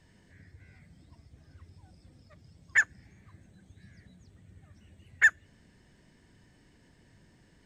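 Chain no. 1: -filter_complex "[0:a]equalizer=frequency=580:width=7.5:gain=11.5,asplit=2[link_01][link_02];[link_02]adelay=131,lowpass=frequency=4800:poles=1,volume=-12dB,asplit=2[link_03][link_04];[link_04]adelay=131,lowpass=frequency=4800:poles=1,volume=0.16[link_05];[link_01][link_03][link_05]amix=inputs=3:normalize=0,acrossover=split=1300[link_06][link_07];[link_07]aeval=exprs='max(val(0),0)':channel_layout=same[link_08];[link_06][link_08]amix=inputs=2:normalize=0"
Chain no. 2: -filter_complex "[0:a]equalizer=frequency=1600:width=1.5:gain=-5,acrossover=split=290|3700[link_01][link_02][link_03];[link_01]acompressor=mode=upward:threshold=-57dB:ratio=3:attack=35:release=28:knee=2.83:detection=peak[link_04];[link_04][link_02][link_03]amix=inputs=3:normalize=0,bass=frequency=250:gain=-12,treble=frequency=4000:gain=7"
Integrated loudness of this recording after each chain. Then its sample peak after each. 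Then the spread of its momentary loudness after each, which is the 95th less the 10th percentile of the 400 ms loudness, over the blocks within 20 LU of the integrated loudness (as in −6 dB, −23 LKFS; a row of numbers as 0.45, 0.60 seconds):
−30.5, −29.5 LKFS; −11.5, −14.0 dBFS; 15, 4 LU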